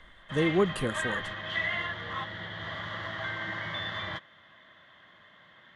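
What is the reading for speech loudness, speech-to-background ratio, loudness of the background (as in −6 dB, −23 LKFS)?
−30.0 LKFS, 4.0 dB, −34.0 LKFS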